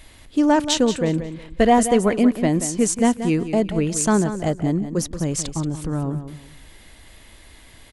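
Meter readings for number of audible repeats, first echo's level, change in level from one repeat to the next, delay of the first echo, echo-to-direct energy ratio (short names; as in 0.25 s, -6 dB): 3, -11.0 dB, -11.5 dB, 0.18 s, -10.5 dB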